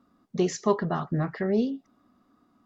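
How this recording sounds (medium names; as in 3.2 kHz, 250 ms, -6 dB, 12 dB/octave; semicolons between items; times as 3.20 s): noise floor -67 dBFS; spectral tilt -6.0 dB/octave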